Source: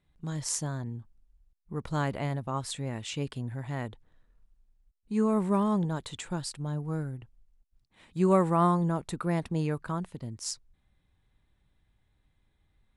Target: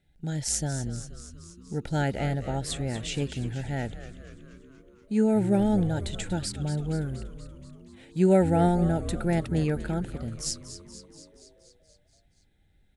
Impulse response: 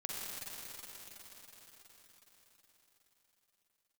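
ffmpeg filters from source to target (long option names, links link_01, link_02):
-filter_complex "[0:a]asuperstop=centerf=1100:order=8:qfactor=2.4,asplit=9[link_01][link_02][link_03][link_04][link_05][link_06][link_07][link_08][link_09];[link_02]adelay=238,afreqshift=-100,volume=-12dB[link_10];[link_03]adelay=476,afreqshift=-200,volume=-15.9dB[link_11];[link_04]adelay=714,afreqshift=-300,volume=-19.8dB[link_12];[link_05]adelay=952,afreqshift=-400,volume=-23.6dB[link_13];[link_06]adelay=1190,afreqshift=-500,volume=-27.5dB[link_14];[link_07]adelay=1428,afreqshift=-600,volume=-31.4dB[link_15];[link_08]adelay=1666,afreqshift=-700,volume=-35.3dB[link_16];[link_09]adelay=1904,afreqshift=-800,volume=-39.1dB[link_17];[link_01][link_10][link_11][link_12][link_13][link_14][link_15][link_16][link_17]amix=inputs=9:normalize=0,volume=3.5dB"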